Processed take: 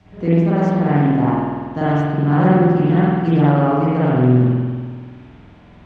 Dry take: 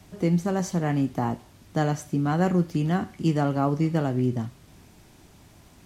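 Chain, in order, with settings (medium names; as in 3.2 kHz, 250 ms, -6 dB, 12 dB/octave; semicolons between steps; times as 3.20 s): low-pass 3.3 kHz 12 dB/octave; reverberation RT60 1.7 s, pre-delay 48 ms, DRR -9.5 dB; loudspeaker Doppler distortion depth 0.22 ms; trim -1 dB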